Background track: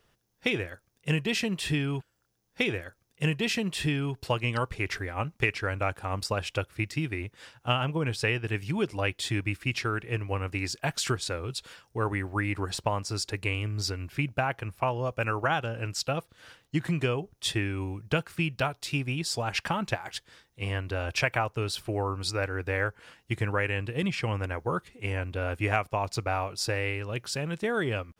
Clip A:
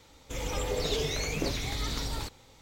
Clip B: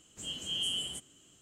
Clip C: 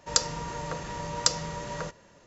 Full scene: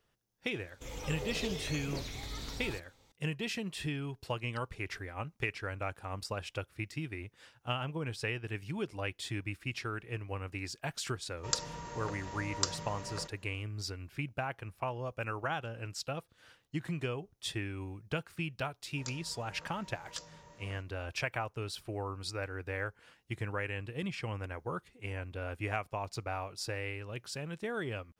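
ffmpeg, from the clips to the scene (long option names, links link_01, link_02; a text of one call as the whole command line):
ffmpeg -i bed.wav -i cue0.wav -i cue1.wav -i cue2.wav -filter_complex "[3:a]asplit=2[link_01][link_02];[0:a]volume=-8.5dB[link_03];[link_02]flanger=delay=17:depth=7.4:speed=1.5[link_04];[1:a]atrim=end=2.61,asetpts=PTS-STARTPTS,volume=-9dB,afade=type=in:duration=0.004:curve=hsin,afade=type=out:start_time=2.606:duration=0.004:curve=hsin,adelay=510[link_05];[link_01]atrim=end=2.26,asetpts=PTS-STARTPTS,volume=-8.5dB,afade=type=in:duration=0.004:curve=hsin,afade=type=out:start_time=2.256:duration=0.004:curve=hsin,adelay=11370[link_06];[link_04]atrim=end=2.26,asetpts=PTS-STARTPTS,volume=-17.5dB,afade=type=in:duration=0.004:curve=hsin,afade=type=out:start_time=2.256:duration=0.004:curve=hsin,adelay=18900[link_07];[link_03][link_05][link_06][link_07]amix=inputs=4:normalize=0" out.wav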